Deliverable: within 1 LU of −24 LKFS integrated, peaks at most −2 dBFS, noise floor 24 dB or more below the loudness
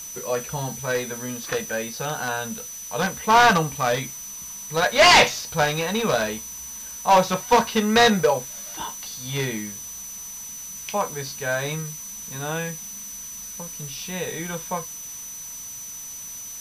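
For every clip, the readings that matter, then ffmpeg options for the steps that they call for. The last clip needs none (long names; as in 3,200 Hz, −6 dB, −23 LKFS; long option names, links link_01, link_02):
interfering tone 6,000 Hz; level of the tone −35 dBFS; background noise floor −37 dBFS; target noise floor −48 dBFS; integrated loudness −23.5 LKFS; sample peak −8.0 dBFS; target loudness −24.0 LKFS
→ -af "bandreject=frequency=6000:width=30"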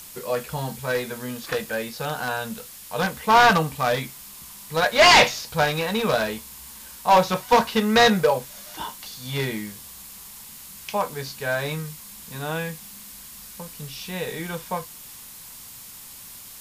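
interfering tone none found; background noise floor −42 dBFS; target noise floor −46 dBFS
→ -af "afftdn=noise_reduction=6:noise_floor=-42"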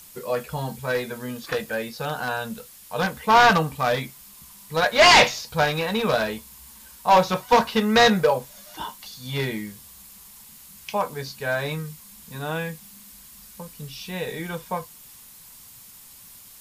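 background noise floor −47 dBFS; integrated loudness −22.0 LKFS; sample peak −8.0 dBFS; target loudness −24.0 LKFS
→ -af "volume=-2dB"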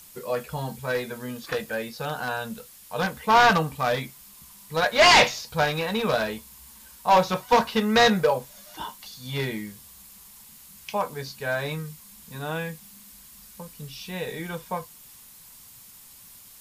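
integrated loudness −24.0 LKFS; sample peak −10.0 dBFS; background noise floor −49 dBFS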